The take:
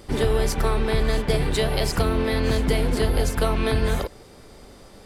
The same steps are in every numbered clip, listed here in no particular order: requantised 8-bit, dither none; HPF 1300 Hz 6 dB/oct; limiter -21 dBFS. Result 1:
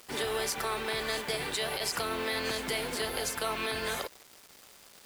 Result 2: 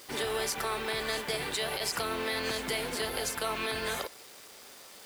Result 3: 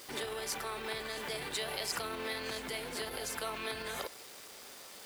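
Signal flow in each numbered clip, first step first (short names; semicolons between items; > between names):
HPF > requantised > limiter; requantised > HPF > limiter; requantised > limiter > HPF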